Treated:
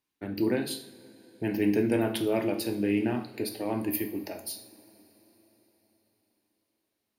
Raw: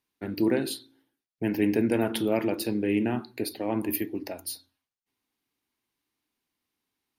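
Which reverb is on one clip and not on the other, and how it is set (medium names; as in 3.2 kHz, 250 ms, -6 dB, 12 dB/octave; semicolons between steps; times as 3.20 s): two-slope reverb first 0.54 s, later 4.7 s, from -21 dB, DRR 6 dB; trim -2.5 dB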